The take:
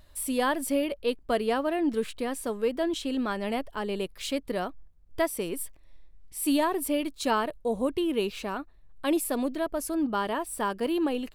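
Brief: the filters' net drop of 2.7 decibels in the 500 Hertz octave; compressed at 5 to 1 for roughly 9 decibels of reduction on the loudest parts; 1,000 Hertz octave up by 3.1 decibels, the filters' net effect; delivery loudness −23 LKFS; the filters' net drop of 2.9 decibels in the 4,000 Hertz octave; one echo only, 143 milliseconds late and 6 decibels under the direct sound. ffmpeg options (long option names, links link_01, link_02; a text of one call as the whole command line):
ffmpeg -i in.wav -af "equalizer=frequency=500:width_type=o:gain=-5,equalizer=frequency=1000:width_type=o:gain=5.5,equalizer=frequency=4000:width_type=o:gain=-4.5,acompressor=threshold=-30dB:ratio=5,aecho=1:1:143:0.501,volume=11dB" out.wav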